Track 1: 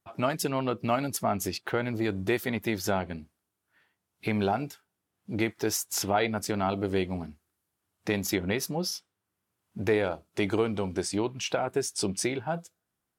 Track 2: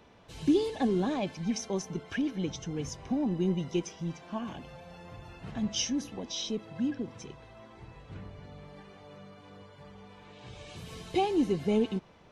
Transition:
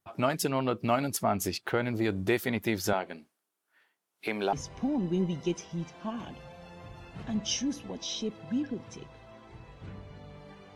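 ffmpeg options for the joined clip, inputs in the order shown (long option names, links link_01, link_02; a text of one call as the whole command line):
ffmpeg -i cue0.wav -i cue1.wav -filter_complex "[0:a]asettb=1/sr,asplit=3[link_01][link_02][link_03];[link_01]atrim=end=2.934[link_04];[link_02]atrim=start=2.93:end=4.53,asetpts=PTS-STARTPTS,afade=type=in:duration=0.004:curve=qsin,afade=type=out:start_time=1.596:duration=0.004:curve=qsin,highpass=340[link_05];[link_03]atrim=start=4.526[link_06];[link_04][link_05]acrossfade=duration=0.004:curve1=hsin:curve2=qsin[link_07];[link_07][link_06]acrossfade=duration=0.004:curve1=qsin:curve2=hsin,apad=whole_dur=10.75,atrim=end=10.75,atrim=end=4.532[link_08];[1:a]atrim=start=2.808:end=9.03[link_09];[link_08][link_09]acrossfade=duration=0.004:curve1=hsin:curve2=hsin" out.wav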